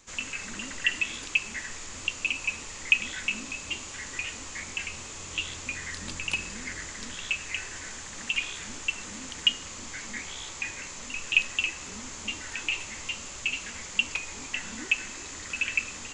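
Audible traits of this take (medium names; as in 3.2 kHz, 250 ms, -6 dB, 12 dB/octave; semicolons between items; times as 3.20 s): noise floor -41 dBFS; spectral tilt -0.5 dB/octave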